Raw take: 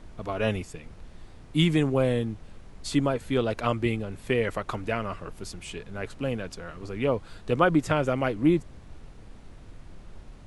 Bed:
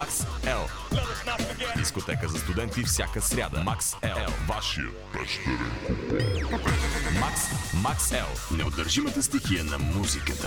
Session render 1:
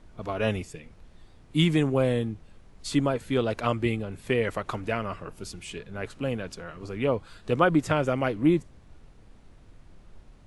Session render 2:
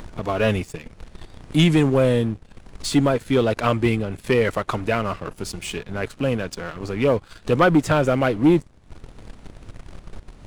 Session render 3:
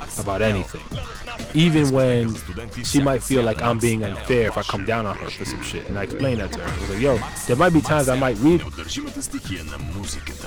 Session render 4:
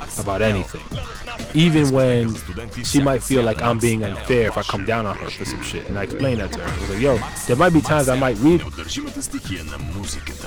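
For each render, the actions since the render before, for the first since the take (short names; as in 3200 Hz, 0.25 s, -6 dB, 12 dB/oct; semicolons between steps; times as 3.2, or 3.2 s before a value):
noise print and reduce 6 dB
sample leveller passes 2; upward compressor, threshold -24 dBFS
add bed -3 dB
gain +1.5 dB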